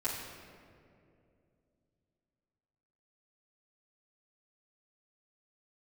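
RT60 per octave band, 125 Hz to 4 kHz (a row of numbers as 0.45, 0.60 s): 3.6, 3.4, 3.0, 2.1, 1.8, 1.2 s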